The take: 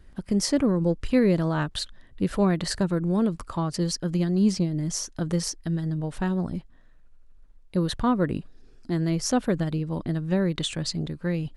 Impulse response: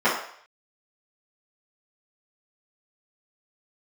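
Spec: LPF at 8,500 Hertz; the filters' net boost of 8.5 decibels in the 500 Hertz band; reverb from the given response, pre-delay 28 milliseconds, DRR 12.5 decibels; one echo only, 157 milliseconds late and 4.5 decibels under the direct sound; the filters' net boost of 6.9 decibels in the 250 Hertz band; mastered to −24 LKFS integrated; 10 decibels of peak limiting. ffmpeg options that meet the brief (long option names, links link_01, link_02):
-filter_complex "[0:a]lowpass=8500,equalizer=frequency=250:width_type=o:gain=7.5,equalizer=frequency=500:width_type=o:gain=8,alimiter=limit=-12.5dB:level=0:latency=1,aecho=1:1:157:0.596,asplit=2[link_01][link_02];[1:a]atrim=start_sample=2205,adelay=28[link_03];[link_02][link_03]afir=irnorm=-1:irlink=0,volume=-32dB[link_04];[link_01][link_04]amix=inputs=2:normalize=0,volume=-2.5dB"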